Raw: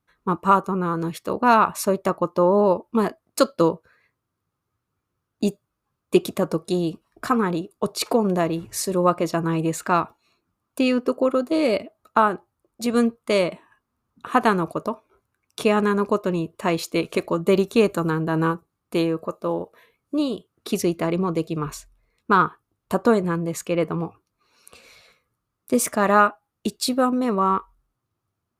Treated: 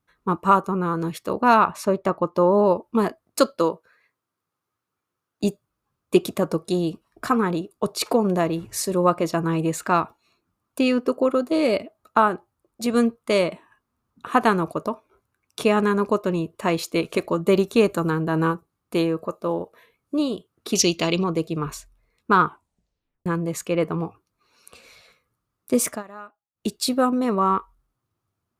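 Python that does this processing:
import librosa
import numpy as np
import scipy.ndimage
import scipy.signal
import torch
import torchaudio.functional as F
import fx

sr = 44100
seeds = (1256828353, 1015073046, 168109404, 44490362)

y = fx.high_shelf(x, sr, hz=6300.0, db=-12.0, at=(1.66, 2.35))
y = fx.highpass(y, sr, hz=390.0, slope=6, at=(3.58, 5.44))
y = fx.band_shelf(y, sr, hz=4200.0, db=15.5, octaves=1.7, at=(20.75, 21.24))
y = fx.edit(y, sr, fx.tape_stop(start_s=22.45, length_s=0.81),
    fx.fade_down_up(start_s=25.89, length_s=0.79, db=-24.0, fade_s=0.14), tone=tone)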